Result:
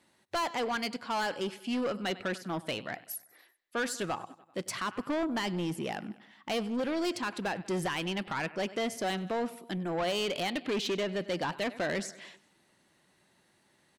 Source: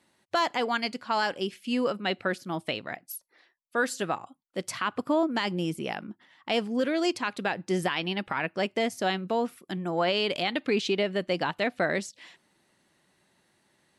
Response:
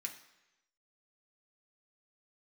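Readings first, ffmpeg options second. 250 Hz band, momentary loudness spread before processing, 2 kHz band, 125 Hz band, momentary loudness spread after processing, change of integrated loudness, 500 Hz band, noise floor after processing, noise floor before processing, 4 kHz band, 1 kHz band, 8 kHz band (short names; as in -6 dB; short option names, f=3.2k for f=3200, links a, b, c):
-3.5 dB, 9 LU, -5.0 dB, -2.5 dB, 8 LU, -4.5 dB, -4.5 dB, -69 dBFS, -72 dBFS, -4.5 dB, -4.5 dB, 0.0 dB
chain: -filter_complex "[0:a]asplit=2[a][b];[b]aecho=0:1:97|194|291|388:0.0794|0.0453|0.0258|0.0147[c];[a][c]amix=inputs=2:normalize=0,asoftclip=type=tanh:threshold=-27dB"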